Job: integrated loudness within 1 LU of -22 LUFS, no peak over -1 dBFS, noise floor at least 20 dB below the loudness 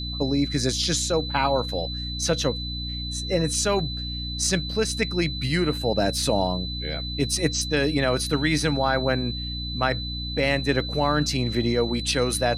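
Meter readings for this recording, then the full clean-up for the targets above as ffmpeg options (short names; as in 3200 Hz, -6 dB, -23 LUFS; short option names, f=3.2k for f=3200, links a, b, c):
hum 60 Hz; harmonics up to 300 Hz; hum level -30 dBFS; steady tone 4000 Hz; tone level -32 dBFS; loudness -24.5 LUFS; peak -8.0 dBFS; loudness target -22.0 LUFS
-> -af "bandreject=f=60:t=h:w=4,bandreject=f=120:t=h:w=4,bandreject=f=180:t=h:w=4,bandreject=f=240:t=h:w=4,bandreject=f=300:t=h:w=4"
-af "bandreject=f=4k:w=30"
-af "volume=2.5dB"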